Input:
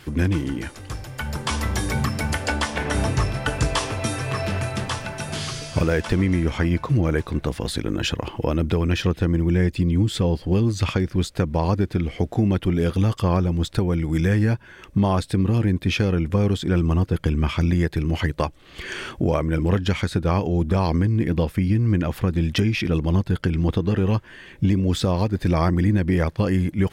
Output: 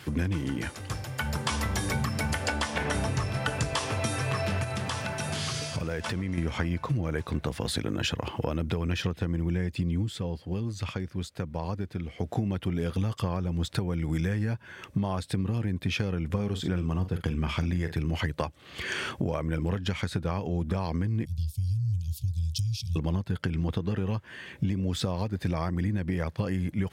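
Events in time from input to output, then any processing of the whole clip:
0:04.63–0:06.38: downward compressor, threshold −26 dBFS
0:09.94–0:12.37: duck −10 dB, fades 0.21 s
0:16.28–0:17.97: double-tracking delay 44 ms −11 dB
0:21.25–0:22.96: inverse Chebyshev band-stop filter 250–1,900 Hz, stop band 50 dB
whole clip: high-pass filter 70 Hz 24 dB per octave; parametric band 330 Hz −4 dB 0.57 octaves; downward compressor 6 to 1, threshold −25 dBFS

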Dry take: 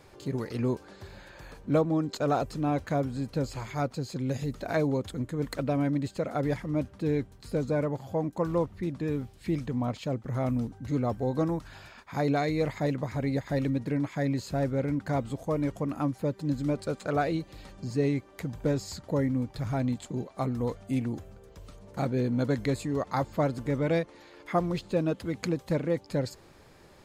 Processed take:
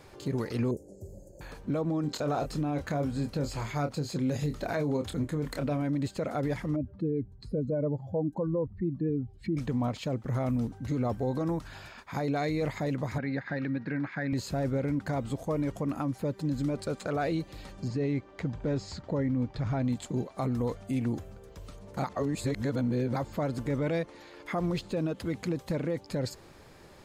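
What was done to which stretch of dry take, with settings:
0:00.71–0:01.41: elliptic band-stop filter 570–6,900 Hz
0:02.01–0:05.82: double-tracking delay 27 ms −8.5 dB
0:06.76–0:09.57: expanding power law on the bin magnitudes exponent 1.8
0:13.18–0:14.33: loudspeaker in its box 180–4,000 Hz, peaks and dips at 300 Hz −4 dB, 440 Hz −7 dB, 620 Hz −7 dB, 1,000 Hz −5 dB, 1,600 Hz +9 dB, 3,200 Hz −10 dB
0:17.88–0:19.85: high-frequency loss of the air 110 metres
0:22.04–0:23.16: reverse
whole clip: brickwall limiter −24 dBFS; level +2 dB

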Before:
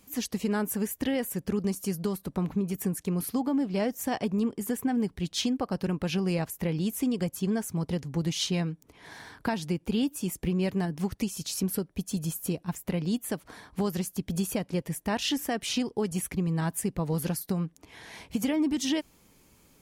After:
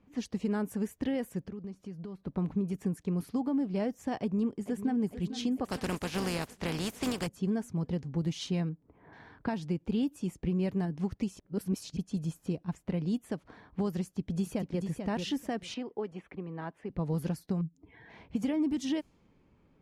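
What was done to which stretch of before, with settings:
0:01.42–0:02.21: downward compressor 3 to 1, threshold −38 dBFS
0:04.20–0:04.99: delay throw 450 ms, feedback 65%, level −11.5 dB
0:05.64–0:07.26: compressing power law on the bin magnitudes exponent 0.43
0:08.69–0:09.13: low-pass filter 1,400 Hz
0:11.39–0:11.97: reverse
0:14.02–0:14.81: delay throw 440 ms, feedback 15%, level −6 dB
0:15.74–0:16.90: three-way crossover with the lows and the highs turned down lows −15 dB, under 300 Hz, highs −17 dB, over 3,300 Hz
0:17.61–0:18.10: expanding power law on the bin magnitudes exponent 2
whole clip: low-shelf EQ 63 Hz −9.5 dB; low-pass that shuts in the quiet parts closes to 2,400 Hz, open at −24.5 dBFS; spectral tilt −2 dB per octave; level −6 dB

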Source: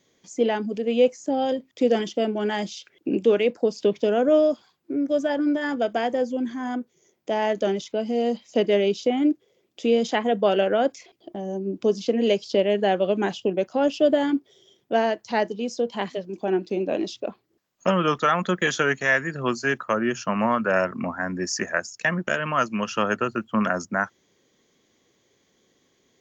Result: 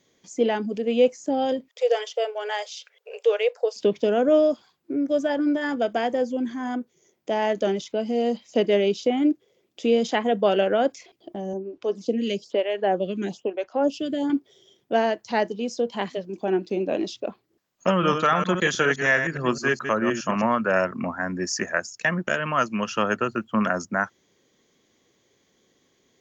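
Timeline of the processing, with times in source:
0:01.68–0:03.76: linear-phase brick-wall high-pass 420 Hz
0:11.53–0:14.30: phaser with staggered stages 1.1 Hz
0:17.92–0:20.43: delay that plays each chunk backwards 104 ms, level −7 dB

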